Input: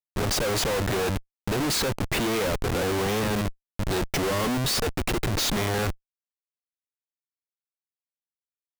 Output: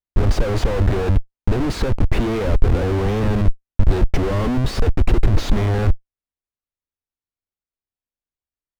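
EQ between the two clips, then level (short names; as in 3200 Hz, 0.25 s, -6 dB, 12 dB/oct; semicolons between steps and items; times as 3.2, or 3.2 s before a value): RIAA curve playback; bell 150 Hz -6.5 dB 0.81 oct; +1.0 dB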